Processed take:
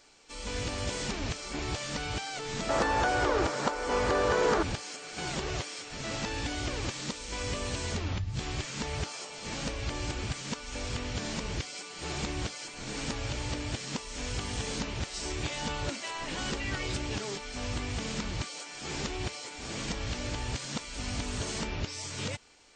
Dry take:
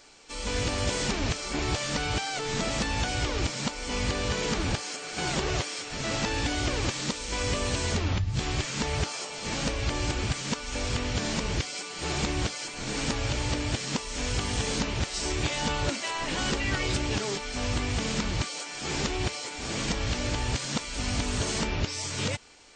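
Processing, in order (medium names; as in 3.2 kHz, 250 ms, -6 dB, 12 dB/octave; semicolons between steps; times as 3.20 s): 2.69–4.63 s: high-order bell 740 Hz +12.5 dB 2.7 oct; trim -5.5 dB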